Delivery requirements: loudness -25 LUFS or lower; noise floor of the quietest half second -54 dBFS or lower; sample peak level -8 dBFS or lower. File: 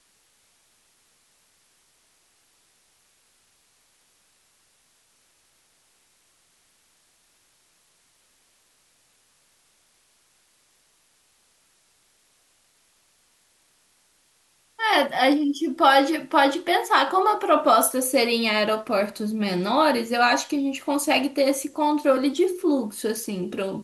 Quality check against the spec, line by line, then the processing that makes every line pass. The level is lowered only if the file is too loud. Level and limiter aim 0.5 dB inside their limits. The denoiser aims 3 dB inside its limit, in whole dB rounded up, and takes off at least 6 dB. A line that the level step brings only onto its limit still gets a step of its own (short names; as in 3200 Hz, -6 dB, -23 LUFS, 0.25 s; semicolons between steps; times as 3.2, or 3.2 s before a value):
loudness -21.5 LUFS: fail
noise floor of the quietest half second -64 dBFS: OK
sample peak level -5.0 dBFS: fail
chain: gain -4 dB